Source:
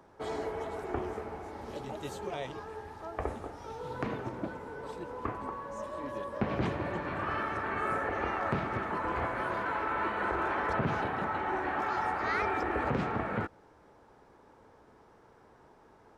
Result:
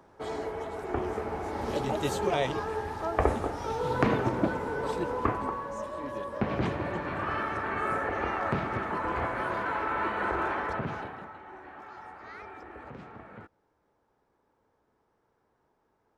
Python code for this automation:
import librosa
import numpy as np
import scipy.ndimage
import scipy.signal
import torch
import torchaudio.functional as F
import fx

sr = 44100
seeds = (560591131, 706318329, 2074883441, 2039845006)

y = fx.gain(x, sr, db=fx.line((0.74, 1.0), (1.64, 10.0), (5.05, 10.0), (5.93, 2.0), (10.44, 2.0), (11.03, -5.5), (11.39, -14.0)))